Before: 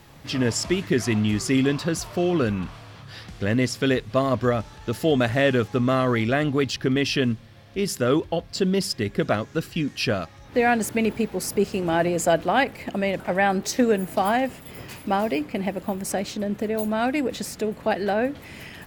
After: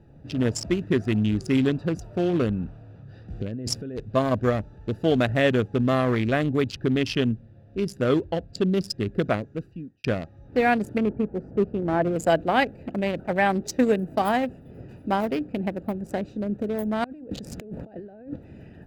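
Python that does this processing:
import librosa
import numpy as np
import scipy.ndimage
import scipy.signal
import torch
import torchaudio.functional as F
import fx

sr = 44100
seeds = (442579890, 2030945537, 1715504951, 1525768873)

y = fx.over_compress(x, sr, threshold_db=-29.0, ratio=-1.0, at=(3.3, 4.0))
y = fx.lowpass(y, sr, hz=1500.0, slope=12, at=(10.98, 12.16))
y = fx.over_compress(y, sr, threshold_db=-36.0, ratio=-1.0, at=(17.04, 18.36))
y = fx.edit(y, sr, fx.fade_out_span(start_s=9.28, length_s=0.76), tone=tone)
y = fx.wiener(y, sr, points=41)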